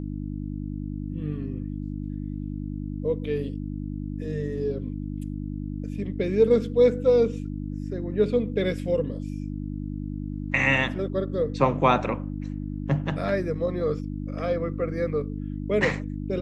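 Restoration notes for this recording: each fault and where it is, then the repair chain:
mains hum 50 Hz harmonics 6 −32 dBFS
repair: hum removal 50 Hz, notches 6

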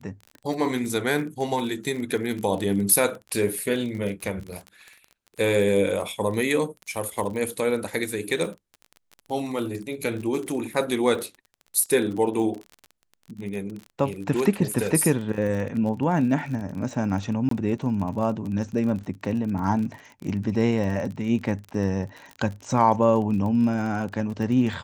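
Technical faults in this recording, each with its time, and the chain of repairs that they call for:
surface crackle 34 per second −31 dBFS
0:17.49–0:17.51: drop-out 23 ms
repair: click removal
repair the gap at 0:17.49, 23 ms

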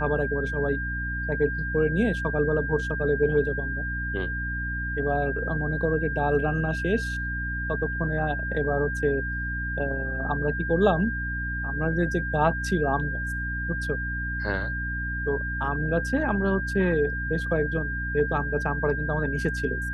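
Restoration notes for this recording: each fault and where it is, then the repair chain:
mains hum 60 Hz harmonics 5 −32 dBFS
whistle 1,600 Hz −30 dBFS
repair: hum removal 60 Hz, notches 5
notch filter 1,600 Hz, Q 30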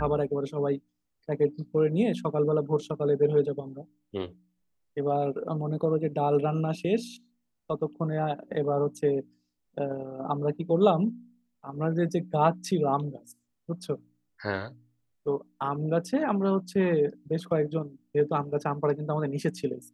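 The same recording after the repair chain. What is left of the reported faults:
none of them is left

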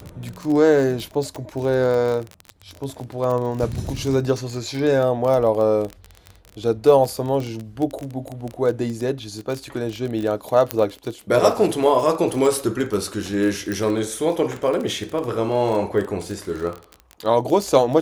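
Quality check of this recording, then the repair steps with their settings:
surface crackle 23 per second −24 dBFS
0:01.36: click −20 dBFS
0:10.71: click −4 dBFS
0:13.72: click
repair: click removal

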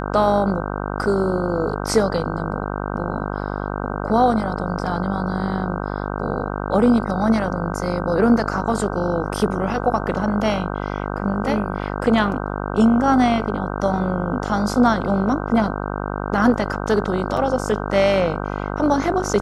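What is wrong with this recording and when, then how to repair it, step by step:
mains buzz 50 Hz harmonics 31 −26 dBFS
0:17.37: drop-out 2.8 ms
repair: hum removal 50 Hz, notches 31
repair the gap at 0:17.37, 2.8 ms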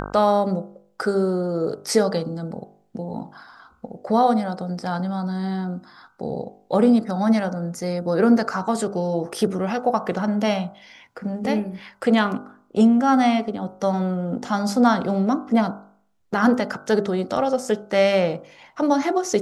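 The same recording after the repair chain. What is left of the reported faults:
none of them is left

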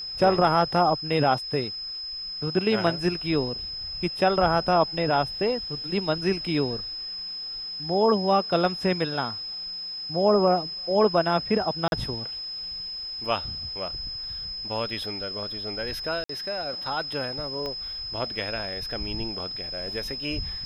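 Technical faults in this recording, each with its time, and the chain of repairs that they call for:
whistle 5,100 Hz −32 dBFS
0:11.88–0:11.92: drop-out 41 ms
0:16.24–0:16.29: drop-out 54 ms
0:17.66: click −20 dBFS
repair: click removal
notch filter 5,100 Hz, Q 30
repair the gap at 0:11.88, 41 ms
repair the gap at 0:16.24, 54 ms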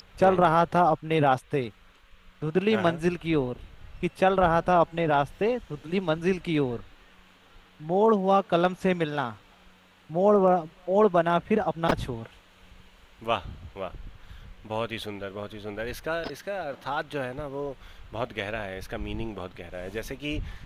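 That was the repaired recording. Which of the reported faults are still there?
0:17.66: click

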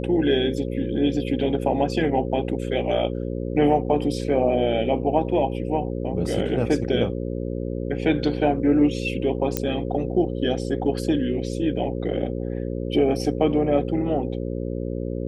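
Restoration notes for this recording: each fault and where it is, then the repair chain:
mains buzz 60 Hz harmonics 9 −28 dBFS
0:09.57: click −7 dBFS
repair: click removal
hum removal 60 Hz, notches 9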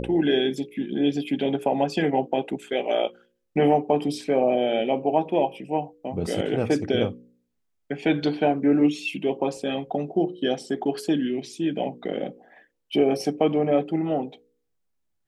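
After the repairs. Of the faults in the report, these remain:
none of them is left

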